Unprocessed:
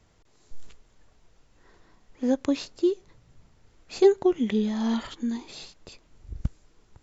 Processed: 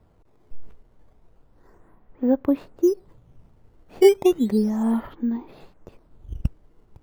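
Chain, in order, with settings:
low-pass filter 1,200 Hz 12 dB per octave
in parallel at −4 dB: sample-and-hold swept by an LFO 10×, swing 160% 0.33 Hz

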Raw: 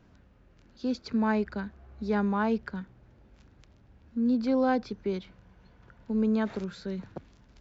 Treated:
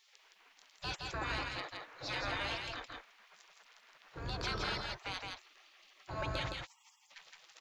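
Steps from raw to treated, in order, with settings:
0:06.50–0:07.09: Butterworth high-pass 1,000 Hz 96 dB per octave
gate on every frequency bin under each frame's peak −30 dB weak
high-shelf EQ 3,300 Hz −6 dB
in parallel at −0.5 dB: brickwall limiter −45.5 dBFS, peak gain reduction 8 dB
on the sum: soft clipping −36.5 dBFS, distortion −24 dB
on a send: single-tap delay 166 ms −3.5 dB
on the sum: level +10 dB

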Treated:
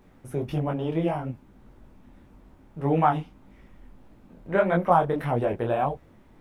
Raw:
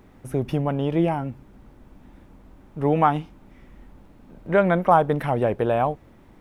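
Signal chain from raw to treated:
micro pitch shift up and down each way 58 cents

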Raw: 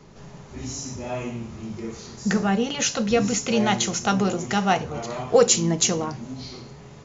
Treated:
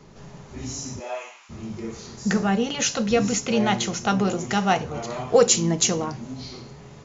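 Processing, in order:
0:00.99–0:01.49: high-pass filter 330 Hz → 1,200 Hz 24 dB per octave
0:03.40–0:04.28: high-frequency loss of the air 62 metres

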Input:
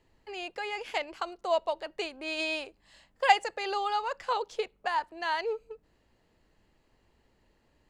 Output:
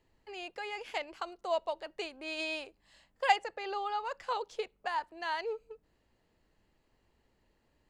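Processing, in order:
0:03.36–0:04.05: low-pass filter 2,900 Hz 6 dB per octave
level −4.5 dB

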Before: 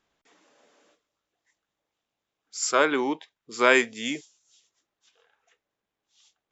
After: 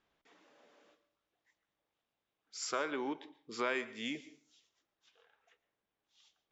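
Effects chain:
low-pass filter 4,600 Hz 12 dB per octave
downward compressor 2.5 to 1, threshold −34 dBFS, peak gain reduction 13.5 dB
convolution reverb RT60 0.50 s, pre-delay 109 ms, DRR 16.5 dB
level −3.5 dB

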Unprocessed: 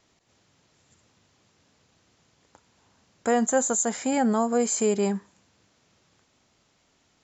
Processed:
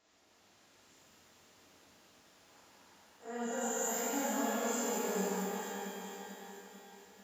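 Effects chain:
spectrum smeared in time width 88 ms
bass and treble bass −11 dB, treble −1 dB
reversed playback
downward compressor 6 to 1, threshold −37 dBFS, peak gain reduction 15.5 dB
reversed playback
pitch vibrato 10 Hz 18 cents
on a send: delay that swaps between a low-pass and a high-pass 222 ms, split 2,200 Hz, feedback 72%, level −3.5 dB
on the sum: reverb with rising layers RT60 2.2 s, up +12 semitones, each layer −8 dB, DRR −8.5 dB
level −6.5 dB

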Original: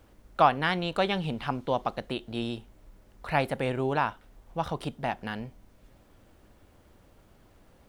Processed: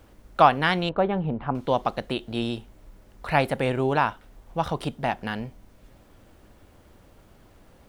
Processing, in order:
0:00.89–0:01.55: low-pass filter 1,100 Hz 12 dB per octave
level +4.5 dB

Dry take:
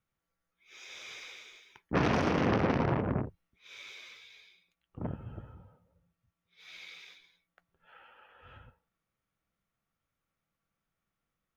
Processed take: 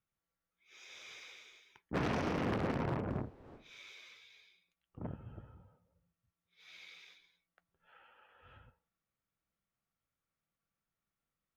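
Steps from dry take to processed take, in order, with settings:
0:03.06–0:03.87: wind on the microphone 530 Hz −47 dBFS
asymmetric clip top −23.5 dBFS
level −6 dB

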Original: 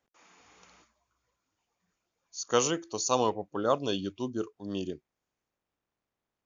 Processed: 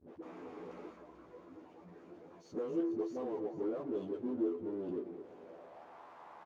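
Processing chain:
high-shelf EQ 6,000 Hz −12 dB
downward compressor, threshold −41 dBFS, peak gain reduction 20 dB
all-pass dispersion highs, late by 81 ms, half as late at 300 Hz
power curve on the samples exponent 0.35
on a send: delay that swaps between a low-pass and a high-pass 220 ms, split 2,200 Hz, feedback 72%, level −11.5 dB
on the sum: band-pass filter sweep 350 Hz → 900 Hz, 0:05.12–0:06.02
double-tracking delay 12 ms −3 dB
level +2.5 dB

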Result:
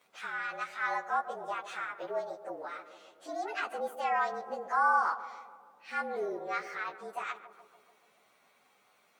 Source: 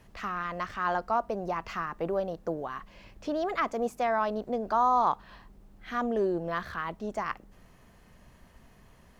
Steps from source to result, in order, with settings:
partials spread apart or drawn together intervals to 111%
high-pass filter 570 Hz 12 dB per octave
on a send: tape delay 143 ms, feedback 76%, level −11 dB, low-pass 1,100 Hz

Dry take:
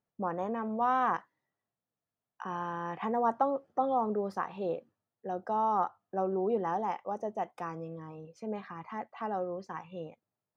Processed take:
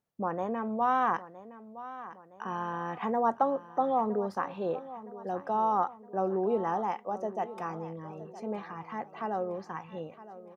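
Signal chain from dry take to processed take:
repeating echo 965 ms, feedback 47%, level −15.5 dB
level +1.5 dB

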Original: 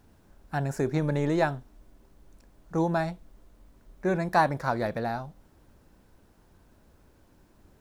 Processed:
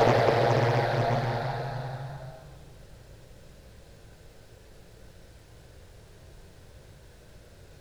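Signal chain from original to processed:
octave-band graphic EQ 125/250/500/1,000/2,000/4,000/8,000 Hz +8/−11/+8/−6/+4/+6/+4 dB
extreme stretch with random phases 4.2×, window 1.00 s, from 0:05.02
highs frequency-modulated by the lows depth 0.73 ms
level +7 dB

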